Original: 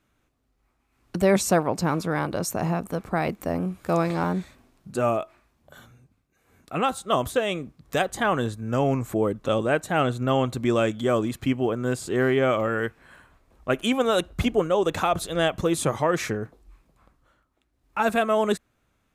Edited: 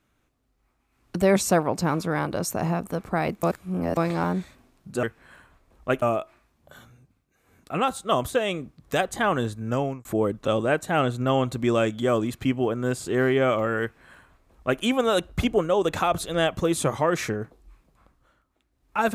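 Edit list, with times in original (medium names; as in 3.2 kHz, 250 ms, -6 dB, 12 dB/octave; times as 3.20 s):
3.43–3.97 s: reverse
8.72–9.06 s: fade out
12.83–13.82 s: copy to 5.03 s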